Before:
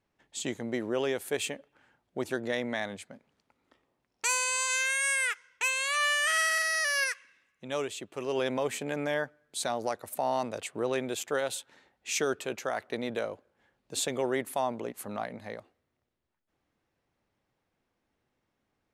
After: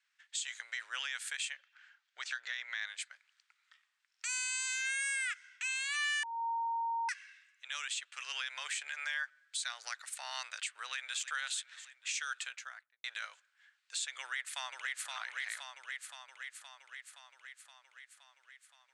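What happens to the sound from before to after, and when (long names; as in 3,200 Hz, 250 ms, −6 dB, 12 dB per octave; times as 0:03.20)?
0:01.53–0:02.87: low-pass filter 6,900 Hz 24 dB per octave
0:06.23–0:07.09: beep over 922 Hz −17.5 dBFS
0:10.67–0:11.28: delay throw 310 ms, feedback 65%, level −17.5 dB
0:12.19–0:13.04: fade out and dull
0:14.20–0:15.10: delay throw 520 ms, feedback 70%, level −4 dB
whole clip: elliptic band-pass filter 1,500–8,400 Hz, stop band 70 dB; downward compressor 6 to 1, threshold −38 dBFS; brickwall limiter −33 dBFS; level +6.5 dB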